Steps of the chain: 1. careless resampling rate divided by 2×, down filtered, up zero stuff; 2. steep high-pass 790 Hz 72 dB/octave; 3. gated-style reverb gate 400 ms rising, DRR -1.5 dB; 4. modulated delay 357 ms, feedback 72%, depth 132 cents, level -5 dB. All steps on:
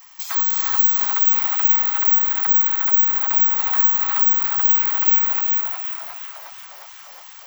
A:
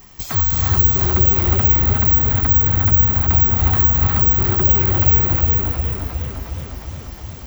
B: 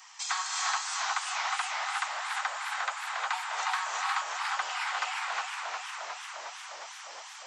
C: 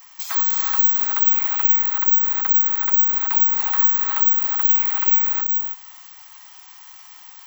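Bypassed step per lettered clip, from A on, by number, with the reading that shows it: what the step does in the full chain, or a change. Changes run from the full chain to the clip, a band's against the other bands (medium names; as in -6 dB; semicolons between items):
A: 2, momentary loudness spread change +6 LU; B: 1, crest factor change +4.5 dB; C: 4, momentary loudness spread change -7 LU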